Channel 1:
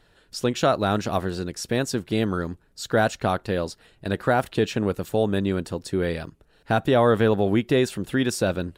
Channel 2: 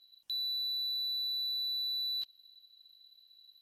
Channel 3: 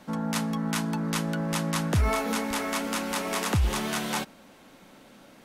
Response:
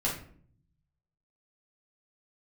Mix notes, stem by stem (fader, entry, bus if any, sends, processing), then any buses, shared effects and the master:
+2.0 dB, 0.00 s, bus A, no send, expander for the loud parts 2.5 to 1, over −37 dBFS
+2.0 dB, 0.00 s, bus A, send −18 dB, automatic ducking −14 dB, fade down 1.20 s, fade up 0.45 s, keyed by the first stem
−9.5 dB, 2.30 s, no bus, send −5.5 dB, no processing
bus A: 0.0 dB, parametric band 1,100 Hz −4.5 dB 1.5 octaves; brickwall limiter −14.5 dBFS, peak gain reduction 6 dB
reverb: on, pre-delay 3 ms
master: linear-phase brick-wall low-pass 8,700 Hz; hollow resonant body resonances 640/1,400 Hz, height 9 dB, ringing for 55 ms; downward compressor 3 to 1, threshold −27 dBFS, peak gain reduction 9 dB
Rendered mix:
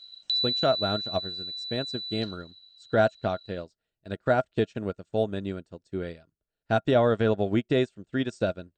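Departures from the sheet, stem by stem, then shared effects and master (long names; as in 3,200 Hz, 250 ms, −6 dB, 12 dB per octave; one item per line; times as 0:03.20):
stem 2 +2.0 dB → +14.0 dB
stem 3: muted
master: missing downward compressor 3 to 1, threshold −27 dBFS, peak gain reduction 9 dB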